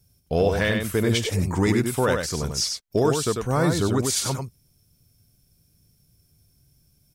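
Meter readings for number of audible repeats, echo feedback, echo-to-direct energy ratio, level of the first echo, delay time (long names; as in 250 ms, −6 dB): 1, repeats not evenly spaced, −5.0 dB, −5.0 dB, 95 ms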